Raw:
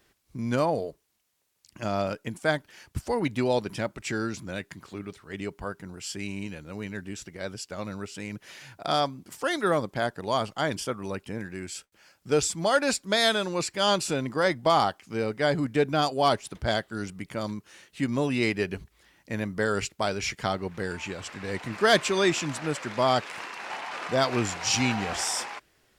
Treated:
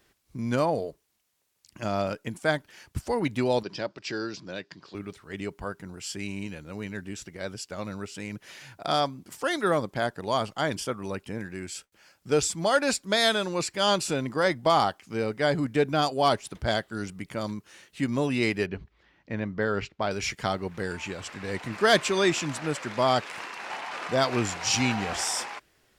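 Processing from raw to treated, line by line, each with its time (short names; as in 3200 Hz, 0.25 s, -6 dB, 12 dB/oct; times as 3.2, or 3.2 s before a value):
3.63–4.95 speaker cabinet 180–5500 Hz, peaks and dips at 230 Hz -7 dB, 800 Hz -3 dB, 1300 Hz -4 dB, 2100 Hz -6 dB, 4900 Hz +8 dB
18.66–20.11 air absorption 210 m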